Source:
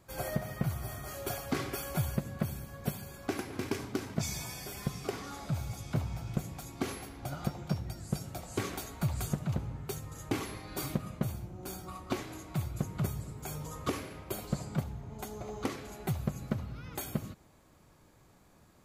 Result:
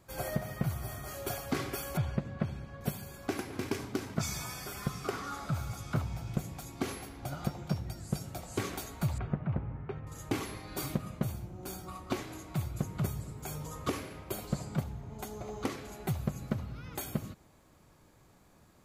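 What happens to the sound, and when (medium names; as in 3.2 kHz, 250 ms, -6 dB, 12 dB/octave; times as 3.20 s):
1.97–2.81 s: low-pass 3.6 kHz
4.17–6.02 s: peaking EQ 1.3 kHz +10 dB 0.46 oct
9.18–10.07 s: low-pass 2.3 kHz 24 dB/octave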